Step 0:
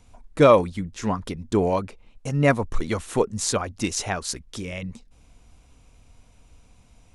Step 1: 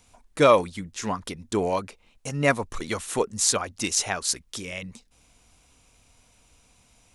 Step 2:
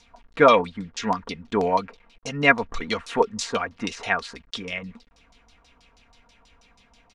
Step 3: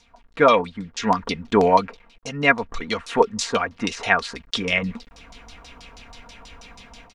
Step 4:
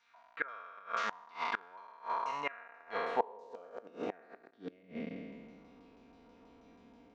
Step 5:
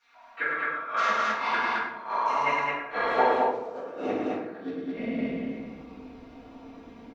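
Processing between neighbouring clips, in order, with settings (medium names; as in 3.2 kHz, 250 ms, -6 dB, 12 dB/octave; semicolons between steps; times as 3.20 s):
tilt EQ +2 dB/octave; trim -1 dB
word length cut 10-bit, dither none; comb 4.3 ms, depth 52%; LFO low-pass saw down 6.2 Hz 870–5500 Hz
level rider gain up to 14.5 dB; trim -1 dB
spectral sustain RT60 1.93 s; inverted gate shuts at -6 dBFS, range -26 dB; band-pass sweep 1.5 kHz -> 320 Hz, 1.99–4.64 s; trim -5 dB
on a send: loudspeakers at several distances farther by 37 m -6 dB, 73 m -2 dB; on the sum: simulated room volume 190 m³, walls mixed, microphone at 3.5 m; trim -2.5 dB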